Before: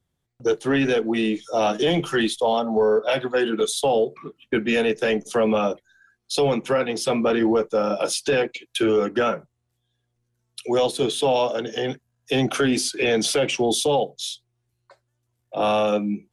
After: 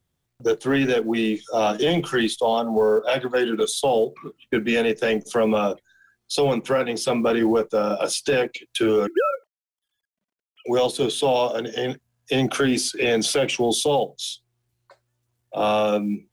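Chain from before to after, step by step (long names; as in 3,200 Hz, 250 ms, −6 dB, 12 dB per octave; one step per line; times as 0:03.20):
0:09.07–0:10.66: three sine waves on the formant tracks
log-companded quantiser 8 bits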